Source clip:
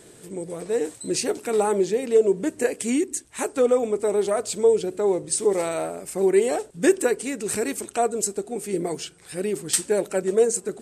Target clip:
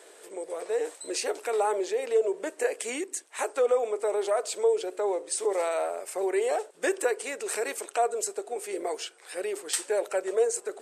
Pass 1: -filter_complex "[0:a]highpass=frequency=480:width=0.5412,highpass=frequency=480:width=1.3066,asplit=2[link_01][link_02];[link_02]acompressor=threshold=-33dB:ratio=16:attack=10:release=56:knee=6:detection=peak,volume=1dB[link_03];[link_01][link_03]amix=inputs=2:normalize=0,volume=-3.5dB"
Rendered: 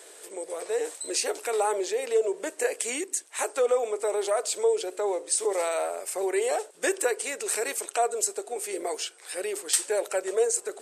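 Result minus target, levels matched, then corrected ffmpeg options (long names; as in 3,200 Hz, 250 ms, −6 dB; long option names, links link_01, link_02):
8,000 Hz band +4.5 dB
-filter_complex "[0:a]highpass=frequency=480:width=0.5412,highpass=frequency=480:width=1.3066,highshelf=frequency=3300:gain=-8,asplit=2[link_01][link_02];[link_02]acompressor=threshold=-33dB:ratio=16:attack=10:release=56:knee=6:detection=peak,volume=1dB[link_03];[link_01][link_03]amix=inputs=2:normalize=0,volume=-3.5dB"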